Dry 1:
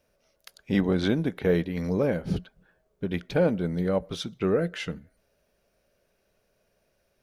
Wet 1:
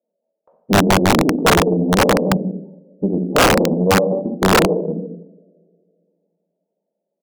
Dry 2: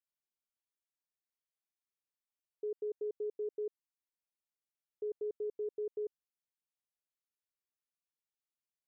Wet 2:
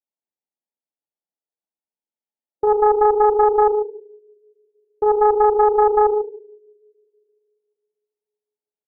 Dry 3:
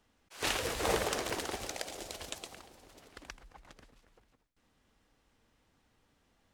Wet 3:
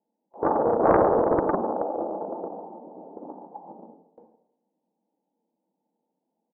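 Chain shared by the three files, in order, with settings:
brick-wall FIR high-pass 160 Hz; low shelf 360 Hz -3 dB; on a send: echo 0.145 s -9 dB; on the sum: spectral gate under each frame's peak -15 dB strong; Chebyshev low-pass 910 Hz, order 6; gate with hold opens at -57 dBFS; two-slope reverb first 0.76 s, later 2.6 s, from -27 dB, DRR 1 dB; in parallel at -2 dB: compressor 8:1, threshold -32 dBFS; on the sum: wrapped overs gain 16 dB; Doppler distortion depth 0.51 ms; normalise peaks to -6 dBFS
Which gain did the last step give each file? +10.0, +20.0, +11.5 dB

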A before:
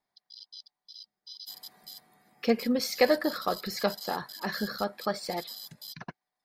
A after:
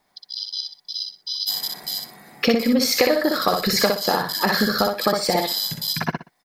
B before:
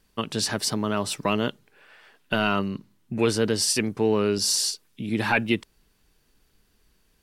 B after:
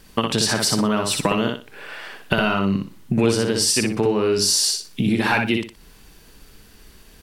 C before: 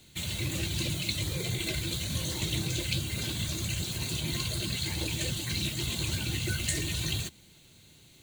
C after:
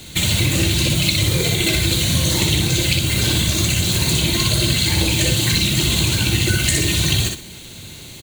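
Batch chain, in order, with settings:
compressor 6:1, threshold -34 dBFS; on a send: feedback echo 61 ms, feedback 24%, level -4 dB; on the sum: normalise peaks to -1.5 dBFS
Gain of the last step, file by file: +17.0, +15.5, +18.5 dB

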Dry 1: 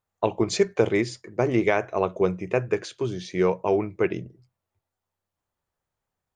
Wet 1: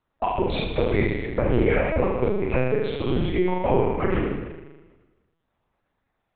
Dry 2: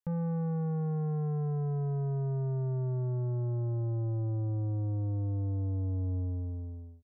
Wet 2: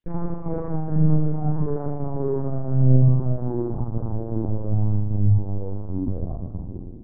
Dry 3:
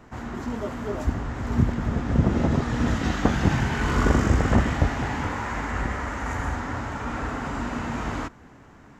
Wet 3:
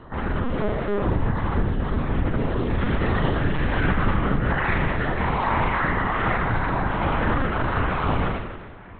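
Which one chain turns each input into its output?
random spectral dropouts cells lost 33%; compressor 12:1, threshold -26 dBFS; flutter echo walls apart 6.7 m, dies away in 1.3 s; LPC vocoder at 8 kHz pitch kept; match loudness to -24 LUFS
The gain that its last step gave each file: +6.0, +8.5, +5.0 dB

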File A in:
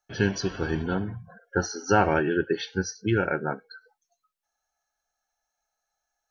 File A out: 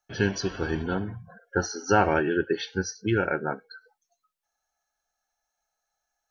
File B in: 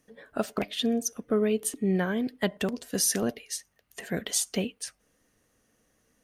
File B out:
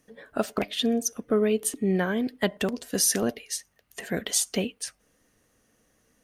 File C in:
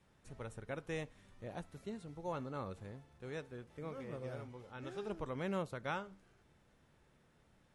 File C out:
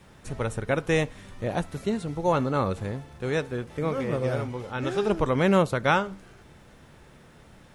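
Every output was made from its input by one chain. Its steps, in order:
dynamic EQ 150 Hz, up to -3 dB, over -38 dBFS, Q 1.5; match loudness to -27 LUFS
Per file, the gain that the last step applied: 0.0, +2.5, +17.5 dB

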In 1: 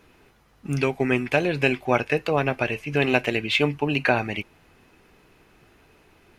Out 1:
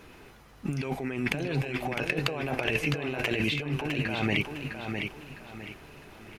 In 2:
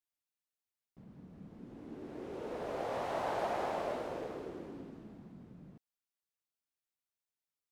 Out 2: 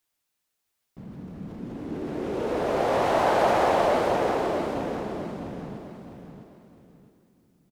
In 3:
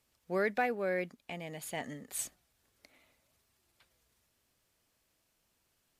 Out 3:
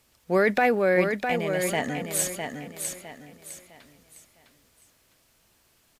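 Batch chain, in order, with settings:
transient shaper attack 0 dB, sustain +4 dB; negative-ratio compressor -30 dBFS, ratio -1; feedback echo 0.657 s, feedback 33%, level -6 dB; normalise peaks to -9 dBFS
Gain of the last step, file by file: -1.0, +13.5, +11.0 dB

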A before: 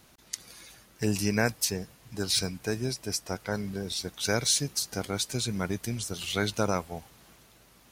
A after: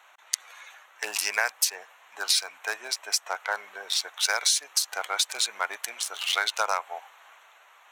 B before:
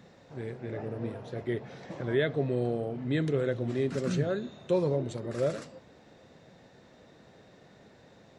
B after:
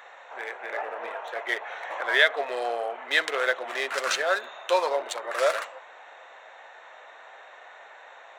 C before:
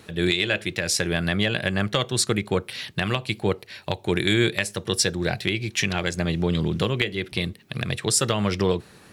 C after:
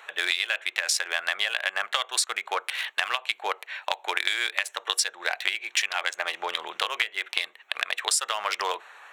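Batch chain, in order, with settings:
Wiener smoothing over 9 samples; HPF 790 Hz 24 dB/oct; compressor 6:1, threshold -31 dBFS; match loudness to -27 LUFS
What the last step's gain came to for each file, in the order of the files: +11.0, +18.0, +9.0 dB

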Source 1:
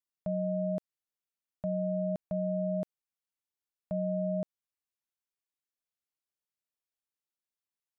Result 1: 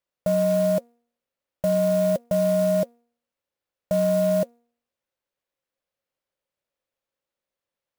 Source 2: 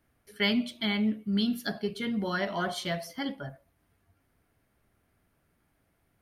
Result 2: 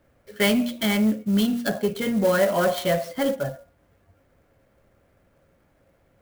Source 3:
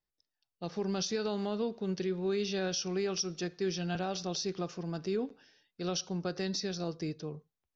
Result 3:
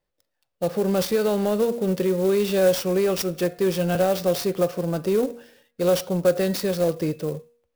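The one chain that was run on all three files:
LPF 3500 Hz 6 dB/oct; bell 540 Hz +14 dB 0.27 oct; de-hum 236.9 Hz, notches 11; in parallel at -3.5 dB: soft clip -29.5 dBFS; on the sum: clock jitter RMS 0.03 ms; match loudness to -23 LUFS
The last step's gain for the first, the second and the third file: +5.0, +4.0, +7.0 dB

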